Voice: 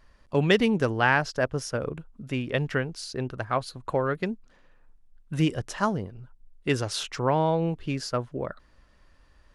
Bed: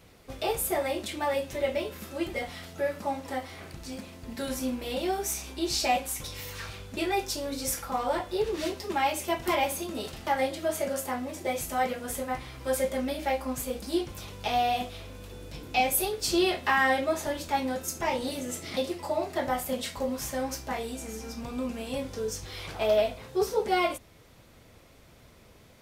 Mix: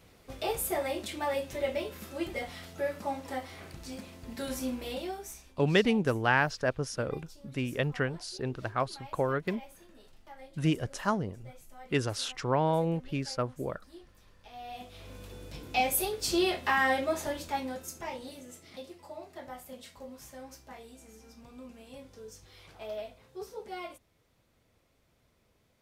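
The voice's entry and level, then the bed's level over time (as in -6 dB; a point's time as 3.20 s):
5.25 s, -3.5 dB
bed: 4.87 s -3 dB
5.70 s -23 dB
14.49 s -23 dB
15.12 s -2.5 dB
17.26 s -2.5 dB
18.64 s -15 dB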